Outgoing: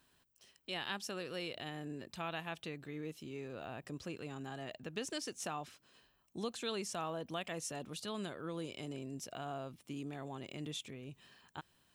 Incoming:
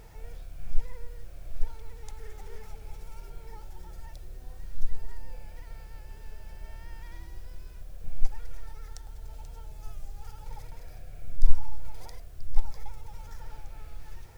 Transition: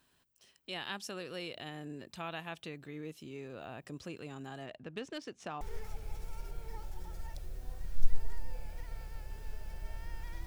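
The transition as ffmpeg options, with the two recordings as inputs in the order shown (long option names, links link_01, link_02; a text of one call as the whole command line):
ffmpeg -i cue0.wav -i cue1.wav -filter_complex "[0:a]asettb=1/sr,asplit=3[link_01][link_02][link_03];[link_01]atrim=end=4.664[link_04];[link_02]atrim=start=4.66:end=5.61,asetpts=PTS-STARTPTS,afade=type=in:duration=0.004:curve=qsin,afade=type=out:start_time=0.946:duration=0.004:curve=qsin,adynamicsmooth=sensitivity=6:basefreq=2900[link_05];[link_03]atrim=start=5.606[link_06];[link_04][link_05]acrossfade=duration=0.004:curve1=hsin:curve2=qsin[link_07];[link_07][link_06]acrossfade=duration=0.004:curve1=qsin:curve2=hsin,apad=whole_dur=10.46,atrim=end=10.46,atrim=end=5.612[link_08];[1:a]atrim=start=2.398:end=7.25[link_09];[link_08][link_09]acrossfade=duration=0.004:curve1=hsin:curve2=hsin" out.wav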